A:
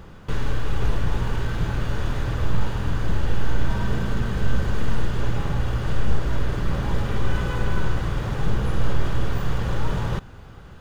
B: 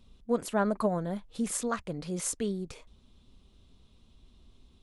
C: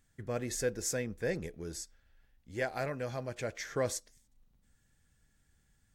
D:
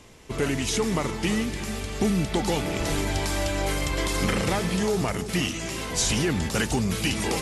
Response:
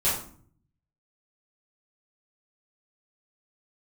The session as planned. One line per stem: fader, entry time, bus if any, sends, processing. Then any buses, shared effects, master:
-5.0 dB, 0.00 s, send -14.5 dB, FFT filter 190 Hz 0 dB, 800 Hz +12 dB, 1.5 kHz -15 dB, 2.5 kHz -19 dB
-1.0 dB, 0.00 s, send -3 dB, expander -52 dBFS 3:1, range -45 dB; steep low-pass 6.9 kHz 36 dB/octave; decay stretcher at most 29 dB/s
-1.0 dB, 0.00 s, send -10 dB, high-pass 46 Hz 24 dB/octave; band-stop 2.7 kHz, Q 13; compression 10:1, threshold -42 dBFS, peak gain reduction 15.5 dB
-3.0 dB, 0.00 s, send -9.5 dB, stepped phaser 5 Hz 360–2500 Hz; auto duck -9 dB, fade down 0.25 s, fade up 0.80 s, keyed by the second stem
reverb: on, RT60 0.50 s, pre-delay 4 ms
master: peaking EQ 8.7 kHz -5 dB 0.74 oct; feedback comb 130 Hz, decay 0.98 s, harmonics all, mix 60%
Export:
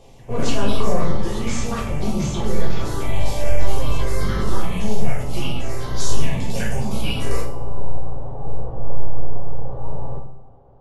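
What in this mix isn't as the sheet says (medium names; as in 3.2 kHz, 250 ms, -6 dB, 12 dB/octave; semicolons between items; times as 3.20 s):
stem C: missing compression 10:1, threshold -42 dBFS, peak gain reduction 15.5 dB; stem D: send -9.5 dB -> -1 dB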